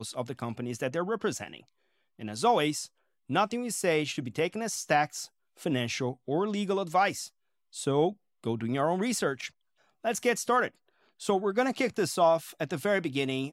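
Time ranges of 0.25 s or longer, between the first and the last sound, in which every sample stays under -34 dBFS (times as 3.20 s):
1.58–2.21 s
2.84–3.30 s
5.25–5.66 s
7.26–7.76 s
8.11–8.46 s
9.47–10.05 s
10.68–11.22 s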